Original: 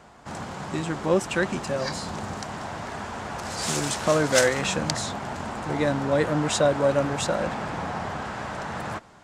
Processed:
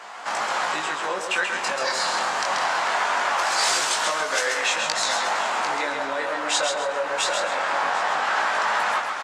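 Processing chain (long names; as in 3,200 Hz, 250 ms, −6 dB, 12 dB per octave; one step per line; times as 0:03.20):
high-shelf EQ 7,900 Hz −10 dB
single-tap delay 748 ms −18.5 dB
automatic gain control gain up to 11.5 dB
flanger 1.2 Hz, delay 10 ms, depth 7.7 ms, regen +90%
downward compressor 5 to 1, threshold −39 dBFS, peak gain reduction 22.5 dB
high-pass filter 900 Hz 12 dB per octave
repeating echo 134 ms, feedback 33%, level −5 dB
chorus effect 0.22 Hz, delay 18 ms, depth 5.5 ms
boost into a limiter +30 dB
level −7 dB
Opus 48 kbit/s 48,000 Hz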